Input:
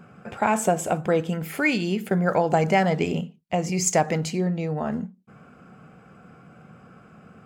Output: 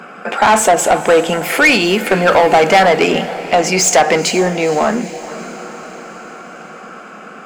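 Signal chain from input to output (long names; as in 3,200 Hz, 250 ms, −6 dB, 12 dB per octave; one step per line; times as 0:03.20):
high-pass filter 200 Hz 24 dB per octave
mid-hump overdrive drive 22 dB, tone 5,000 Hz, clips at −6 dBFS
on a send: feedback delay with all-pass diffusion 463 ms, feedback 60%, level −15 dB
on the sum: level +5 dB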